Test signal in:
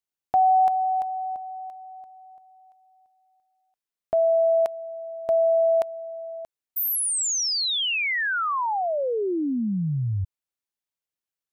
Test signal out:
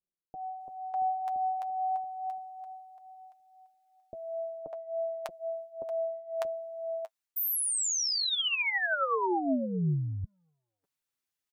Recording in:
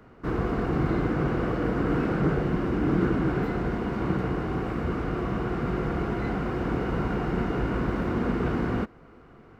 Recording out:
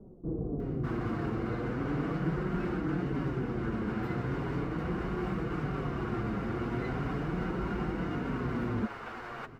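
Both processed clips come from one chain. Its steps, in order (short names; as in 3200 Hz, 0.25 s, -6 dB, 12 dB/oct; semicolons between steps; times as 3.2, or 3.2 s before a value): reverse; compressor 6:1, threshold -32 dBFS; reverse; flange 0.39 Hz, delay 5.1 ms, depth 4.3 ms, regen +33%; bands offset in time lows, highs 0.6 s, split 580 Hz; gain +6.5 dB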